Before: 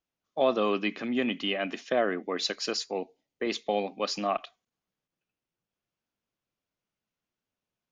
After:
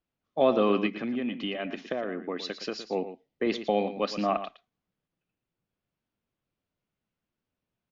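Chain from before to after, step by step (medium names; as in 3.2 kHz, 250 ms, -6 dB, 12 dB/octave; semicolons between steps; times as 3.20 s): bass shelf 330 Hz +7.5 dB; 0.86–2.89 s: compression 5:1, threshold -29 dBFS, peak gain reduction 10 dB; low-pass 4 kHz 12 dB/octave; delay 115 ms -11.5 dB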